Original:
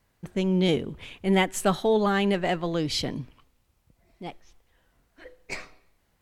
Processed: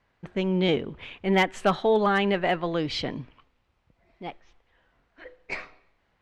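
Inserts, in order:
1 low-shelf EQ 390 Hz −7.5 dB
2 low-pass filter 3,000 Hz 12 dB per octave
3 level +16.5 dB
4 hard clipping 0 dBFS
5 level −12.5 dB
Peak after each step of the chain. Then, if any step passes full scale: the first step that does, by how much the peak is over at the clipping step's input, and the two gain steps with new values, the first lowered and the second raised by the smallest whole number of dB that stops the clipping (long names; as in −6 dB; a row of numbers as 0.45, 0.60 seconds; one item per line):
−11.0, −11.5, +5.0, 0.0, −12.5 dBFS
step 3, 5.0 dB
step 3 +11.5 dB, step 5 −7.5 dB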